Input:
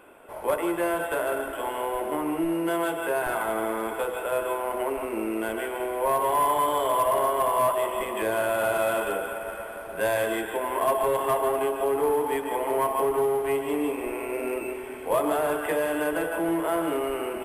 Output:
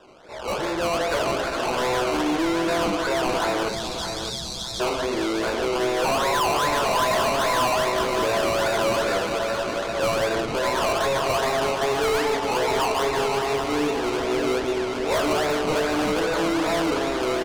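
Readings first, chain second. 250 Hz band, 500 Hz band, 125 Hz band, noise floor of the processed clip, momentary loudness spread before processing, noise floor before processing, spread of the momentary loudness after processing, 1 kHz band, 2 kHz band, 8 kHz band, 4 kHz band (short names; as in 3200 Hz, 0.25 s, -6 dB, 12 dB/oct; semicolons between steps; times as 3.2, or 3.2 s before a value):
+4.0 dB, +2.5 dB, +9.5 dB, -31 dBFS, 7 LU, -37 dBFS, 5 LU, +2.5 dB, +5.0 dB, +6.0 dB, +14.0 dB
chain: doubler 16 ms -5 dB; decimation with a swept rate 20×, swing 60% 2.5 Hz; spectral delete 3.69–4.8, 230–3200 Hz; LPF 5700 Hz 12 dB/oct; de-hum 87.51 Hz, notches 30; hard clip -25.5 dBFS, distortion -8 dB; limiter -30.5 dBFS, peak gain reduction 5 dB; feedback echo 0.611 s, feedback 37%, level -8 dB; AGC gain up to 10 dB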